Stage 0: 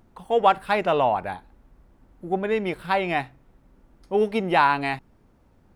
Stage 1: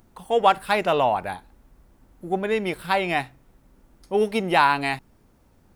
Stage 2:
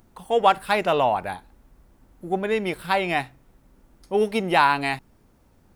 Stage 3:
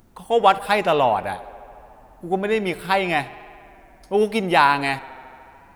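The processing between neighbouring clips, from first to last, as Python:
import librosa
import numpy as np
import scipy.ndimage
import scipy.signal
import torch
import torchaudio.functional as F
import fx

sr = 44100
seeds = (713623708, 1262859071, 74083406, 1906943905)

y1 = fx.high_shelf(x, sr, hz=4600.0, db=11.0)
y2 = y1
y3 = fx.echo_tape(y2, sr, ms=71, feedback_pct=88, wet_db=-21, lp_hz=6000.0, drive_db=1.0, wow_cents=26)
y3 = y3 * 10.0 ** (2.5 / 20.0)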